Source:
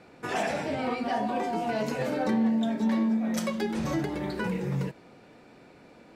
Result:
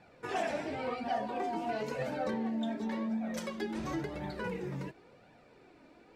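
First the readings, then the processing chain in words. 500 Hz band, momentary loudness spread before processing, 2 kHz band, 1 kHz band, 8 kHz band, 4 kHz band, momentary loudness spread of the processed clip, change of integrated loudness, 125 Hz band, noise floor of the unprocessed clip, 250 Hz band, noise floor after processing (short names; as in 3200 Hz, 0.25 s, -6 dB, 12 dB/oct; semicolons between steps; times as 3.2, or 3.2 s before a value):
-5.0 dB, 6 LU, -6.0 dB, -5.0 dB, -8.5 dB, -6.5 dB, 4 LU, -7.5 dB, -9.5 dB, -54 dBFS, -9.0 dB, -60 dBFS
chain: high shelf 7200 Hz -6 dB; flange 0.94 Hz, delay 1.1 ms, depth 2.3 ms, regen +27%; gain -2 dB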